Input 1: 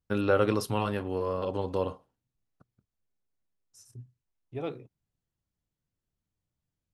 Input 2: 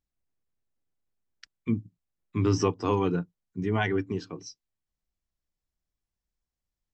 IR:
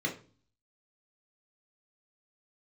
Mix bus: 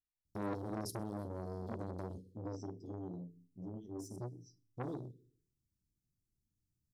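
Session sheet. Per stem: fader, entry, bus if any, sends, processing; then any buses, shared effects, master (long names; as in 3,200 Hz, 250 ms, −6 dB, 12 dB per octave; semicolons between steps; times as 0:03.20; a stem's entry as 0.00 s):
+1.5 dB, 0.25 s, send −18.5 dB, echo send −19.5 dB, leveller curve on the samples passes 1; downward compressor 4 to 1, threshold −33 dBFS, peak gain reduction 13 dB
−19.5 dB, 0.00 s, send −7 dB, no echo send, no processing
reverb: on, RT60 0.40 s, pre-delay 3 ms
echo: repeating echo 65 ms, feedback 54%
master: inverse Chebyshev band-stop filter 740–2,400 Hz, stop band 50 dB; saturating transformer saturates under 1,100 Hz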